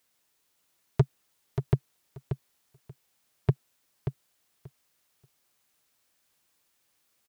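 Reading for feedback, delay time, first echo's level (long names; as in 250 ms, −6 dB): 16%, 583 ms, −8.0 dB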